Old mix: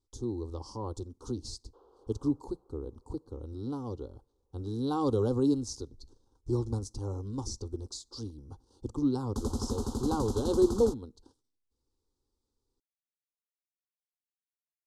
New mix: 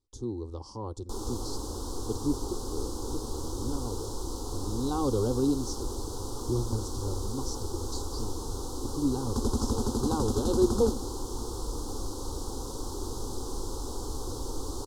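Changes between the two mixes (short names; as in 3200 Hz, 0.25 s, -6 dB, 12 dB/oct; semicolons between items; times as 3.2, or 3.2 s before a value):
first sound: unmuted; second sound +4.0 dB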